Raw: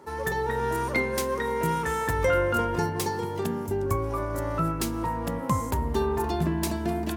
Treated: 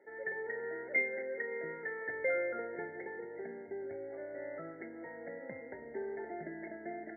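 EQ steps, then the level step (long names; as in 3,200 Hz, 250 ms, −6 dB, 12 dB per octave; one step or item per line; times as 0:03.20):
high-pass filter 780 Hz 12 dB per octave
Butterworth band-reject 1,100 Hz, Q 0.75
linear-phase brick-wall low-pass 2,200 Hz
0.0 dB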